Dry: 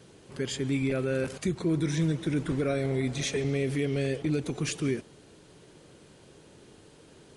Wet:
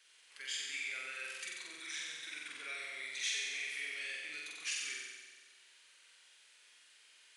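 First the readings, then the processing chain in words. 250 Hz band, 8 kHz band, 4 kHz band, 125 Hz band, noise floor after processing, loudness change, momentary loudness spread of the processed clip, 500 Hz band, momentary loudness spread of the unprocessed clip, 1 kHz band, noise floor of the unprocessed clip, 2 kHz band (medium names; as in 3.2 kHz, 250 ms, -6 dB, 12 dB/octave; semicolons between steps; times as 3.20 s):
-37.5 dB, -2.5 dB, -1.0 dB, under -40 dB, -64 dBFS, -10.5 dB, 12 LU, -30.0 dB, 4 LU, -12.0 dB, -55 dBFS, -0.5 dB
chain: resonant high-pass 2.1 kHz, resonance Q 1.6; flutter echo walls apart 7.9 m, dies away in 1.4 s; trim -7.5 dB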